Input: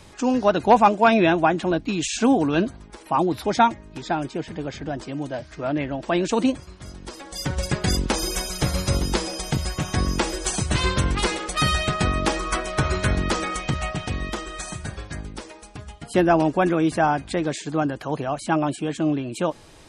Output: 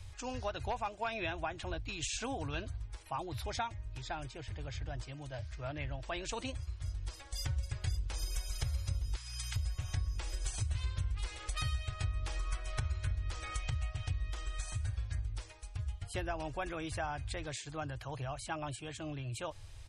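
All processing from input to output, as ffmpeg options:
ffmpeg -i in.wav -filter_complex "[0:a]asettb=1/sr,asplit=3[link_01][link_02][link_03];[link_01]atrim=end=9.164[link_04];[link_02]atrim=start=9.16:end=9.56,asetpts=PTS-STARTPTS,afade=type=in:duration=0.004:curve=qsin,afade=type=out:start_time=0.396:duration=0.004:curve=qsin,highpass=frequency=1100:width=0.5412,highpass=frequency=1100:width=1.3066,aeval=exprs='val(0)+0.00794*(sin(2*PI*60*n/s)+sin(2*PI*2*60*n/s)/2+sin(2*PI*3*60*n/s)/3+sin(2*PI*4*60*n/s)/4+sin(2*PI*5*60*n/s)/5)':channel_layout=same[link_05];[link_03]atrim=start=9.556[link_06];[link_04][link_05]acrossfade=duration=0.004:curve1=hsin:curve2=qsin[link_07];[link_07][link_06]acrossfade=duration=0.004:curve1=qsin:curve2=hsin,firequalizer=gain_entry='entry(110,0);entry(170,-30);entry(570,-20);entry(2400,-13)':delay=0.05:min_phase=1,acompressor=threshold=-37dB:ratio=6,volume=4dB" out.wav

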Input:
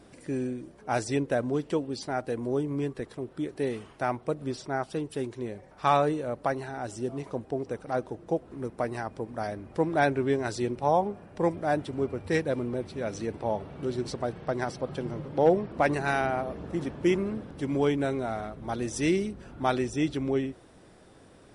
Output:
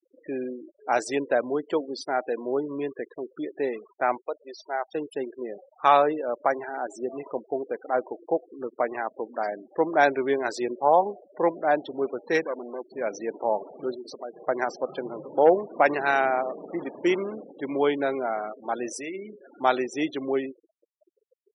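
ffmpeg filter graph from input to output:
ffmpeg -i in.wav -filter_complex "[0:a]asettb=1/sr,asplit=3[link_01][link_02][link_03];[link_01]atrim=end=4.214[link_04];[link_02]atrim=start=4.21:end=4.95,asetpts=PTS-STARTPTS,afade=type=in:duration=0.004:curve=qsin,afade=type=out:start_time=0.736:duration=0.004:curve=qsin,highpass=610,lowpass=6200,equalizer=frequency=1300:width_type=o:width=0.72:gain=-5[link_05];[link_03]atrim=start=4.946[link_06];[link_04][link_05]acrossfade=duration=0.004:curve1=hsin:curve2=qsin[link_07];[link_07][link_06]acrossfade=duration=0.004:curve1=qsin:curve2=hsin,asettb=1/sr,asplit=3[link_08][link_09][link_10];[link_08]atrim=end=12.464[link_11];[link_09]atrim=start=12.46:end=12.91,asetpts=PTS-STARTPTS,afade=type=in:duration=0.004:curve=qsin,afade=type=out:start_time=0.446:duration=0.004:curve=qsin,lowpass=frequency=4000:width=0.5412,lowpass=frequency=4000:width=1.3066,lowshelf=frequency=91:gain=-5.5,aeval=exprs='(tanh(22.4*val(0)+0.75)-tanh(0.75))/22.4':channel_layout=same[link_12];[link_10]atrim=start=12.906[link_13];[link_11][link_12]acrossfade=duration=0.004:curve1=hsin:curve2=qsin[link_14];[link_14][link_13]acrossfade=duration=0.004:curve1=qsin:curve2=hsin,asettb=1/sr,asplit=3[link_15][link_16][link_17];[link_15]atrim=end=13.944[link_18];[link_16]atrim=start=13.94:end=14.48,asetpts=PTS-STARTPTS,afade=type=in:duration=0.004:curve=qsin,afade=type=out:start_time=0.536:duration=0.004:curve=qsin,volume=23.5dB,asoftclip=hard,volume=-23.5dB,acompressor=threshold=-38dB:ratio=3:attack=3.2:release=140:knee=1:detection=peak[link_19];[link_17]atrim=start=14.476[link_20];[link_18][link_19]acrossfade=duration=0.004:curve1=hsin:curve2=qsin[link_21];[link_21][link_20]acrossfade=duration=0.004:curve1=qsin:curve2=hsin,asettb=1/sr,asplit=3[link_22][link_23][link_24];[link_22]atrim=end=18.934[link_25];[link_23]atrim=start=18.93:end=19.5,asetpts=PTS-STARTPTS,afade=type=in:duration=0.004:curve=qsin,afade=type=out:start_time=0.566:duration=0.004:curve=qsin,bandreject=frequency=60:width_type=h:width=6,bandreject=frequency=120:width_type=h:width=6,bandreject=frequency=180:width_type=h:width=6,bandreject=frequency=240:width_type=h:width=6,bandreject=frequency=300:width_type=h:width=6,bandreject=frequency=360:width_type=h:width=6,bandreject=frequency=420:width_type=h:width=6,adynamicequalizer=threshold=0.0178:dfrequency=270:dqfactor=1.1:tfrequency=270:tqfactor=1.1:attack=5:release=100:ratio=0.375:range=1.5:mode=cutabove:tftype=bell,acompressor=threshold=-33dB:ratio=5:attack=3.2:release=140:knee=1:detection=peak[link_26];[link_24]atrim=start=19.496[link_27];[link_25][link_26]acrossfade=duration=0.004:curve1=hsin:curve2=qsin[link_28];[link_28][link_27]acrossfade=duration=0.004:curve1=qsin:curve2=hsin,highpass=350,equalizer=frequency=1000:width=0.32:gain=3.5,afftfilt=real='re*gte(hypot(re,im),0.0141)':imag='im*gte(hypot(re,im),0.0141)':win_size=1024:overlap=0.75,volume=2dB" out.wav

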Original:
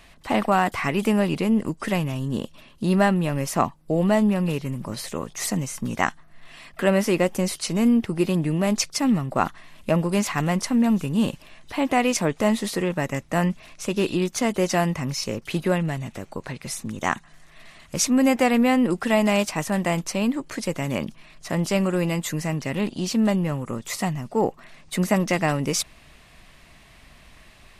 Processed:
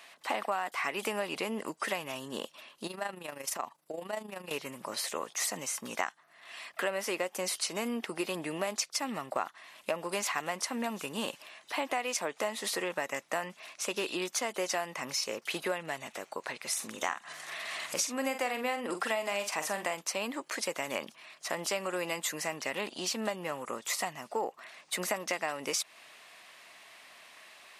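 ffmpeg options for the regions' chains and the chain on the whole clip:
ffmpeg -i in.wav -filter_complex "[0:a]asettb=1/sr,asplit=3[link_01][link_02][link_03];[link_01]atrim=end=2.874[link_04];[link_02]atrim=start=2.87:end=4.51,asetpts=PTS-STARTPTS,afade=type=in:duration=0.004:curve=qsin,afade=type=out:start_time=1.636:duration=0.004:curve=qsin,acompressor=threshold=-32dB:ratio=2:attack=3.2:release=140:knee=1:detection=peak,highshelf=frequency=4800:gain=4.5,tremolo=f=26:d=0.667[link_05];[link_03]atrim=start=4.506[link_06];[link_04][link_05]acrossfade=duration=0.004:curve1=hsin:curve2=qsin[link_07];[link_07][link_06]acrossfade=duration=0.004:curve1=qsin:curve2=hsin,asettb=1/sr,asplit=3[link_08][link_09][link_10];[link_08]atrim=end=16.734[link_11];[link_09]atrim=start=16.73:end=19.94,asetpts=PTS-STARTPTS,afade=type=in:duration=0.004:curve=qsin,afade=type=out:start_time=3.206:duration=0.004:curve=qsin,acompressor=mode=upward:threshold=-24dB:ratio=2.5:attack=3.2:release=140:knee=2.83:detection=peak,asplit=2[link_12][link_13];[link_13]adelay=45,volume=-9dB[link_14];[link_12][link_14]amix=inputs=2:normalize=0,atrim=end_sample=141561[link_15];[link_10]atrim=start=19.936[link_16];[link_11][link_15]acrossfade=duration=0.004:curve1=hsin:curve2=qsin[link_17];[link_17][link_16]acrossfade=duration=0.004:curve1=qsin:curve2=hsin,highpass=580,acompressor=threshold=-29dB:ratio=6" out.wav

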